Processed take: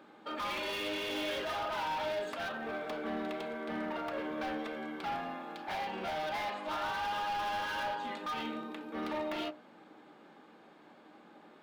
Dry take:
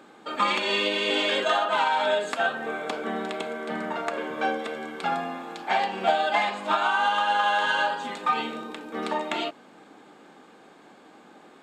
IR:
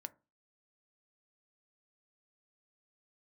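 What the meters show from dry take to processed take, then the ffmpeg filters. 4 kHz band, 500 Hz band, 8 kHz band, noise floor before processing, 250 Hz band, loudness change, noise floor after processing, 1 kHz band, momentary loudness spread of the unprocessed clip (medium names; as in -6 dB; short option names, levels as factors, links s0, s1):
-12.0 dB, -10.0 dB, -9.5 dB, -52 dBFS, -5.5 dB, -11.0 dB, -58 dBFS, -11.5 dB, 9 LU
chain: -filter_complex "[0:a]volume=25.1,asoftclip=hard,volume=0.0398,equalizer=f=7700:t=o:w=0.79:g=-10.5[s0];[1:a]atrim=start_sample=2205[s1];[s0][s1]afir=irnorm=-1:irlink=0,volume=0.841"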